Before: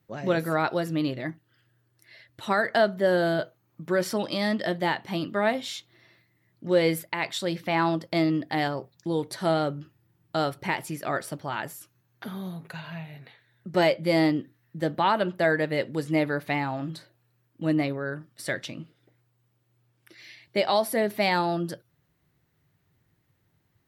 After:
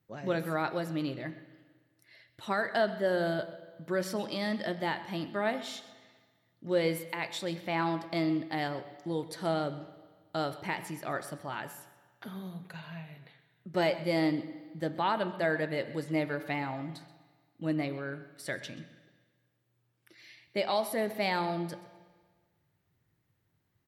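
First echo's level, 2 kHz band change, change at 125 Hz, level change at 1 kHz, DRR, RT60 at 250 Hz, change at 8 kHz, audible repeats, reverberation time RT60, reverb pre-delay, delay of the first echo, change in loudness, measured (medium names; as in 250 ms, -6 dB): -18.0 dB, -6.0 dB, -6.0 dB, -6.0 dB, 11.0 dB, 1.5 s, -6.5 dB, 1, 1.5 s, 28 ms, 129 ms, -6.0 dB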